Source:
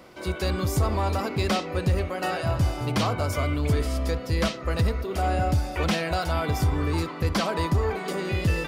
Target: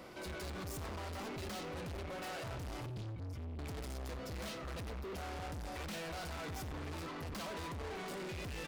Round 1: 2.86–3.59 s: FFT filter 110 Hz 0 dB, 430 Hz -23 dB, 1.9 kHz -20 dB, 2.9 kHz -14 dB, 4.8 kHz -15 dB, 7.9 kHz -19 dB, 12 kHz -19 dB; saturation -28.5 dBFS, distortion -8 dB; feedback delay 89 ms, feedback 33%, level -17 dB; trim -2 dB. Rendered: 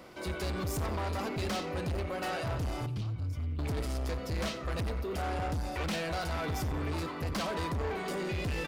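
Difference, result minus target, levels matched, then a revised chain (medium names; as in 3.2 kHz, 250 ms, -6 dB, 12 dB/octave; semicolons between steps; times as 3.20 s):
saturation: distortion -5 dB
2.86–3.59 s: FFT filter 110 Hz 0 dB, 430 Hz -23 dB, 1.9 kHz -20 dB, 2.9 kHz -14 dB, 4.8 kHz -15 dB, 7.9 kHz -19 dB, 12 kHz -19 dB; saturation -40 dBFS, distortion -3 dB; feedback delay 89 ms, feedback 33%, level -17 dB; trim -2 dB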